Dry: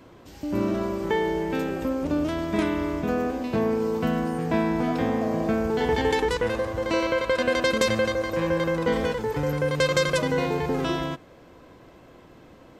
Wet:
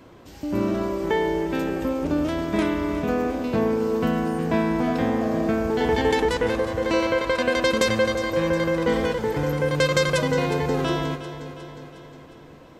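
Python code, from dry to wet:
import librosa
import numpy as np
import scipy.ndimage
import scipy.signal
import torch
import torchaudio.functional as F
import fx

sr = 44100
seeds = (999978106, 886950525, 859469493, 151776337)

y = fx.echo_feedback(x, sr, ms=360, feedback_pct=58, wet_db=-13.0)
y = y * librosa.db_to_amplitude(1.5)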